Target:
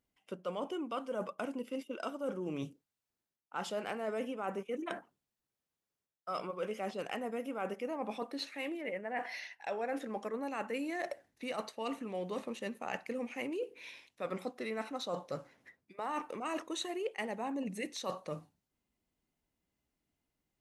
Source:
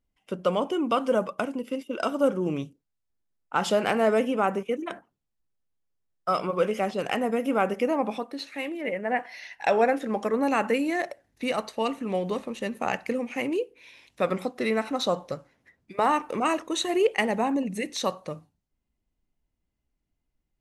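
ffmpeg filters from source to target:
-af "highpass=f=190:p=1,areverse,acompressor=threshold=-38dB:ratio=5,areverse,volume=1.5dB"

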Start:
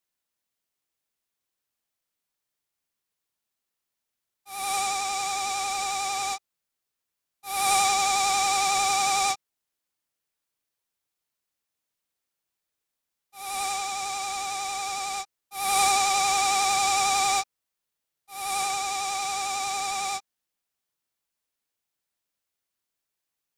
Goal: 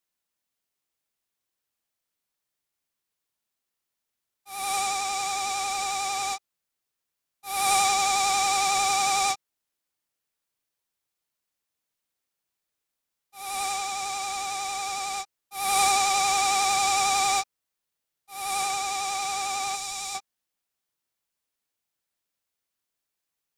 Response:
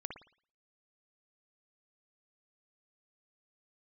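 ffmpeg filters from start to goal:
-filter_complex "[0:a]asettb=1/sr,asplit=3[a][b][c];[a]atrim=end=19.754[d];[b]atrim=start=19.75:end=20.15,asetpts=PTS-STARTPTS,afade=t=in:d=0.004:c=qsin,afade=t=out:st=0.396:d=0.004:c=qsin,acrossover=split=120|3000[e][f][g];[f]acompressor=threshold=-38dB:ratio=6[h];[e][h][g]amix=inputs=3:normalize=0[i];[c]atrim=start=20.146[j];[d][i]acrossfade=d=0.004:c1=hsin:c2=qsin[k];[k][j]acrossfade=d=0.004:c1=qsin:c2=hsin"

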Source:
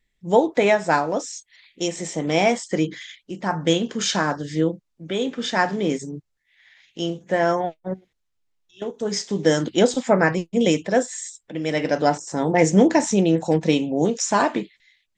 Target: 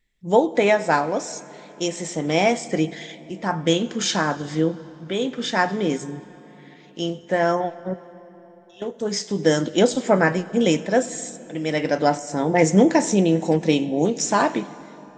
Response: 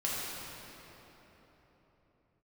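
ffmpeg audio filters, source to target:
-filter_complex "[0:a]asplit=2[a][b];[1:a]atrim=start_sample=2205,adelay=93[c];[b][c]afir=irnorm=-1:irlink=0,volume=-24dB[d];[a][d]amix=inputs=2:normalize=0"

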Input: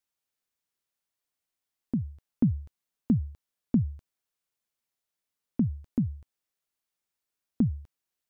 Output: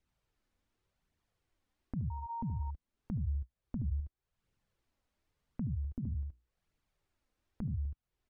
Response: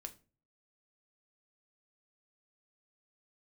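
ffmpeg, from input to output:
-filter_complex "[0:a]asettb=1/sr,asplit=3[a][b][c];[a]atrim=end=2.104[d];[b]atrim=start=2.1:end=2.63,asetpts=PTS-STARTPTS,afade=t=in:d=0.004:c=qsin,afade=t=out:st=0.526:d=0.004:c=qsin,aeval=exprs='val(0)+0.0251*sin(2*PI*930*n/s)':c=same[e];[c]atrim=start=2.626[f];[d][e]acrossfade=d=0.004:c1=hsin:c2=qsin[g];[g][f]acrossfade=d=0.004:c1=qsin:c2=hsin,asettb=1/sr,asplit=3[h][i][j];[h]atrim=end=3.164[k];[i]atrim=start=3.16:end=3.93,asetpts=PTS-STARTPTS,afade=t=in:d=0.004:c=qsin,afade=t=out:st=0.766:d=0.004:c=qsin,equalizer=f=62:t=o:w=0.77:g=6.5[l];[j]atrim=start=3.926[m];[k][l]acrossfade=d=0.004:c1=hsin:c2=qsin[n];[n][m]acrossfade=d=0.004:c1=qsin:c2=hsin,aecho=1:1:74:0.668,flanger=delay=0.3:depth=3.8:regen=-26:speed=0.89:shape=triangular,alimiter=level_in=13.5dB:limit=-24dB:level=0:latency=1:release=123,volume=-13.5dB,aemphasis=mode=reproduction:type=riaa,acompressor=threshold=-56dB:ratio=2,asettb=1/sr,asplit=3[o][p][q];[o]atrim=end=5.994[r];[p]atrim=start=5.99:end=7.74,asetpts=PTS-STARTPTS,afade=t=in:d=0.004:c=qsin,afade=t=out:st=1.746:d=0.004:c=qsin,bandreject=f=60:t=h:w=6,bandreject=f=120:t=h:w=6,bandreject=f=180:t=h:w=6,bandreject=f=240:t=h:w=6,bandreject=f=300:t=h:w=6,bandreject=f=360:t=h:w=6,bandreject=f=420:t=h:w=6[s];[q]atrim=start=7.736[t];[r][s]acrossfade=d=0.004:c1=hsin:c2=qsin[u];[u][t]acrossfade=d=0.004:c1=qsin:c2=hsin,volume=10dB"

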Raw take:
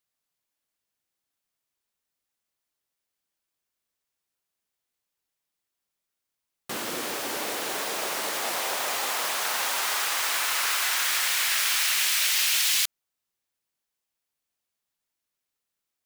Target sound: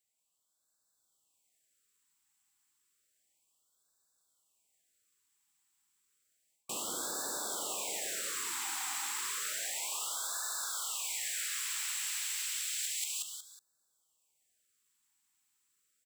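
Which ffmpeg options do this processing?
-filter_complex "[0:a]equalizer=f=7.7k:t=o:w=0.21:g=14,aecho=1:1:184|368|552|736:0.631|0.183|0.0531|0.0154,asplit=2[a][b];[b]alimiter=limit=-21.5dB:level=0:latency=1,volume=0.5dB[c];[a][c]amix=inputs=2:normalize=0,dynaudnorm=f=150:g=11:m=5dB,lowshelf=f=460:g=-5.5,areverse,acompressor=threshold=-26dB:ratio=10,areverse,afftfilt=real='re*(1-between(b*sr/1024,510*pow(2500/510,0.5+0.5*sin(2*PI*0.31*pts/sr))/1.41,510*pow(2500/510,0.5+0.5*sin(2*PI*0.31*pts/sr))*1.41))':imag='im*(1-between(b*sr/1024,510*pow(2500/510,0.5+0.5*sin(2*PI*0.31*pts/sr))/1.41,510*pow(2500/510,0.5+0.5*sin(2*PI*0.31*pts/sr))*1.41))':win_size=1024:overlap=0.75,volume=-8dB"

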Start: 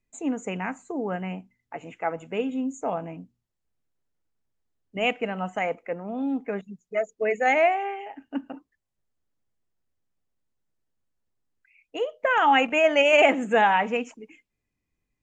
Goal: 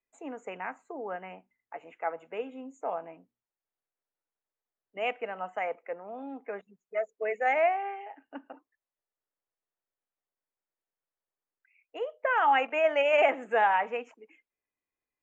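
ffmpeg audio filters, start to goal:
-filter_complex "[0:a]acrossover=split=390 2500:gain=0.1 1 0.178[a][b][c];[a][b][c]amix=inputs=3:normalize=0,volume=-3.5dB"

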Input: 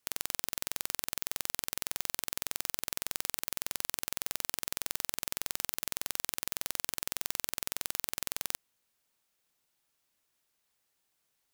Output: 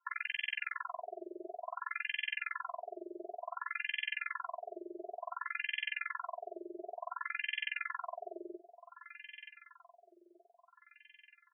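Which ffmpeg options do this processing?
-filter_complex "[0:a]aecho=1:1:927|1854|2781|3708|4635|5562:0.188|0.107|0.0612|0.0349|0.0199|0.0113,afftfilt=real='hypot(re,im)*cos(PI*b)':imag='0':win_size=512:overlap=0.75,asplit=2[a][b];[b]adelay=14,volume=-13dB[c];[a][c]amix=inputs=2:normalize=0,afftfilt=real='re*between(b*sr/1024,440*pow(2400/440,0.5+0.5*sin(2*PI*0.56*pts/sr))/1.41,440*pow(2400/440,0.5+0.5*sin(2*PI*0.56*pts/sr))*1.41)':imag='im*between(b*sr/1024,440*pow(2400/440,0.5+0.5*sin(2*PI*0.56*pts/sr))/1.41,440*pow(2400/440,0.5+0.5*sin(2*PI*0.56*pts/sr))*1.41)':win_size=1024:overlap=0.75,volume=13dB"

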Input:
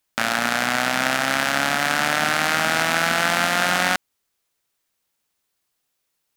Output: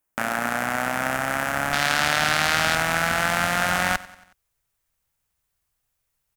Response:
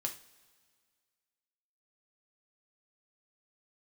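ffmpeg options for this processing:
-af "asetnsamples=n=441:p=0,asendcmd='1.73 equalizer g 2.5;2.75 equalizer g -5.5',equalizer=f=4.1k:t=o:w=1.3:g=-14,aecho=1:1:92|184|276|368:0.106|0.0583|0.032|0.0176,asubboost=boost=10:cutoff=89,volume=-1dB"

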